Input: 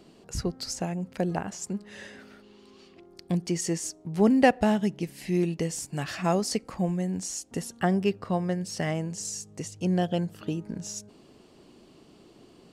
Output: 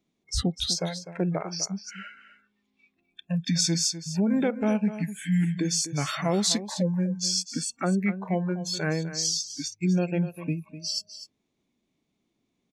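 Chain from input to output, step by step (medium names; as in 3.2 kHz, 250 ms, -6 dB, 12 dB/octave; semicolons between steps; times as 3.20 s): peak limiter -19.5 dBFS, peak gain reduction 12 dB; treble shelf 5.9 kHz +8 dB; formant shift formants -4 st; spectral noise reduction 27 dB; on a send: delay 251 ms -12.5 dB; on the sum: trim +4 dB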